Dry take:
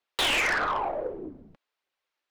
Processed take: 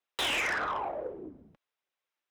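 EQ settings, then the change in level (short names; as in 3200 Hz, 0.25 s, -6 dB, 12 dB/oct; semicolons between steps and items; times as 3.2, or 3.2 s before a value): HPF 45 Hz; notch 4400 Hz, Q 9.1; -5.0 dB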